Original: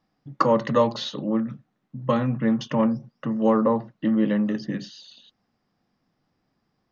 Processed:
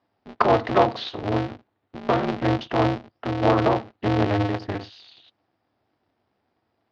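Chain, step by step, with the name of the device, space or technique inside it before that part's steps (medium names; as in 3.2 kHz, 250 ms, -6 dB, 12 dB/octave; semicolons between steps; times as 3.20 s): ring modulator pedal into a guitar cabinet (polarity switched at an audio rate 100 Hz; cabinet simulation 100–4400 Hz, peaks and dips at 100 Hz +4 dB, 160 Hz -6 dB, 740 Hz +6 dB)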